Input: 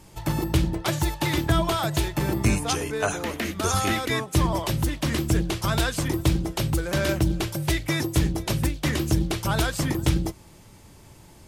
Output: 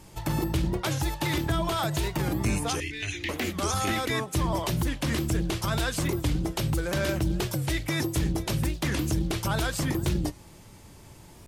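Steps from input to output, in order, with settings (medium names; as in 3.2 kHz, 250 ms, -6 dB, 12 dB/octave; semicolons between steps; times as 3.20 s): 2.80–3.29 s: FFT filter 120 Hz 0 dB, 180 Hz -21 dB, 340 Hz -2 dB, 490 Hz -27 dB, 1.4 kHz -23 dB, 1.9 kHz +5 dB, 3.6 kHz +3 dB, 11 kHz -16 dB; peak limiter -18 dBFS, peak gain reduction 6.5 dB; warped record 45 rpm, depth 160 cents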